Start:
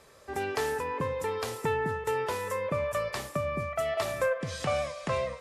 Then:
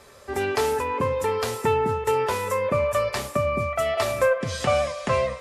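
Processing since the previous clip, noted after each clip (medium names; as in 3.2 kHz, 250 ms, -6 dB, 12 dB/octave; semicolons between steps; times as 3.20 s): comb of notches 160 Hz; trim +8 dB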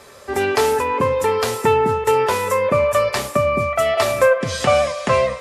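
bass shelf 75 Hz -9.5 dB; trim +6.5 dB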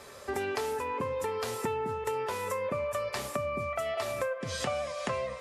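compression 5:1, threshold -26 dBFS, peak gain reduction 15 dB; trim -5 dB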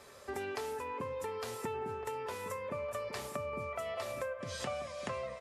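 echo from a far wall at 250 m, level -10 dB; trim -6.5 dB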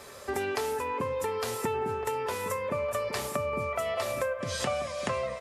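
treble shelf 9.6 kHz +4.5 dB; trim +8 dB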